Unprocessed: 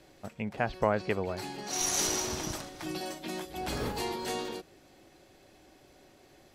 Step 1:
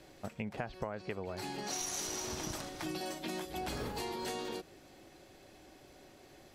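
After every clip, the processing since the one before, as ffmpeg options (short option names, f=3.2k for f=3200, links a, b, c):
-af "acompressor=threshold=-36dB:ratio=12,volume=1dB"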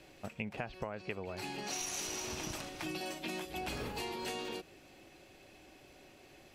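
-af "equalizer=f=2.6k:t=o:w=0.44:g=8,volume=-1.5dB"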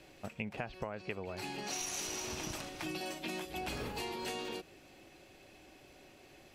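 -af anull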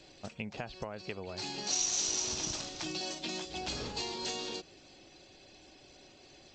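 -af "afftfilt=real='re*gte(hypot(re,im),0.000562)':imag='im*gte(hypot(re,im),0.000562)':win_size=1024:overlap=0.75,highshelf=f=3.2k:t=q:w=1.5:g=8" -ar 16000 -c:a g722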